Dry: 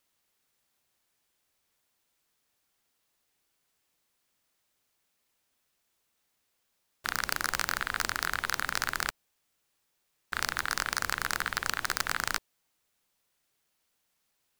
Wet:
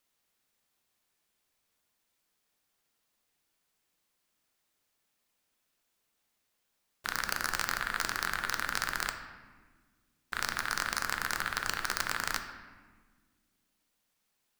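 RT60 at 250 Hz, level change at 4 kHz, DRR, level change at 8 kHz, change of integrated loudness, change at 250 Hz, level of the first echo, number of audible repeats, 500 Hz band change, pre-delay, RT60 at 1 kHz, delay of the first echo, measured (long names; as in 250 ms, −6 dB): 2.4 s, −2.0 dB, 6.0 dB, −2.0 dB, −1.5 dB, −0.5 dB, no echo audible, no echo audible, −1.5 dB, 3 ms, 1.4 s, no echo audible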